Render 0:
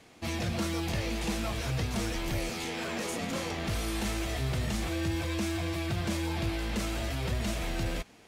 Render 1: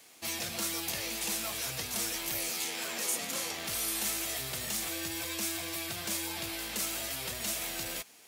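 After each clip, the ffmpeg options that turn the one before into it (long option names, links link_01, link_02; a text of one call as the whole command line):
ffmpeg -i in.wav -af "aemphasis=mode=production:type=riaa,volume=-4dB" out.wav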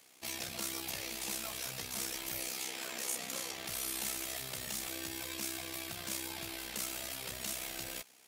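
ffmpeg -i in.wav -af "tremolo=f=64:d=0.667,volume=-2dB" out.wav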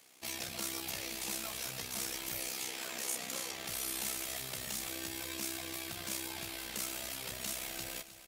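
ffmpeg -i in.wav -af "aecho=1:1:311|622|933|1244|1555:0.178|0.0942|0.05|0.0265|0.014" out.wav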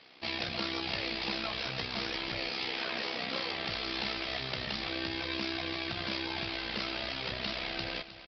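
ffmpeg -i in.wav -af "aresample=11025,aresample=44100,volume=8dB" out.wav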